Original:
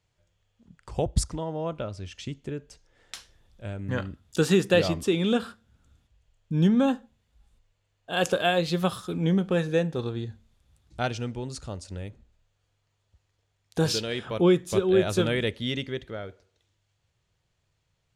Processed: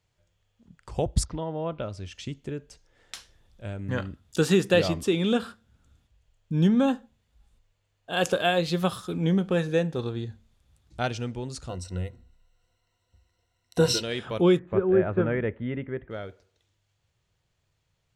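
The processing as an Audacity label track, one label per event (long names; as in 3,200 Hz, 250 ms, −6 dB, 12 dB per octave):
1.250000	1.830000	low-pass filter 4,300 Hz 24 dB per octave
11.690000	14.020000	EQ curve with evenly spaced ripples crests per octave 2, crest to trough 15 dB
14.590000	16.110000	inverse Chebyshev low-pass filter stop band from 4,800 Hz, stop band 50 dB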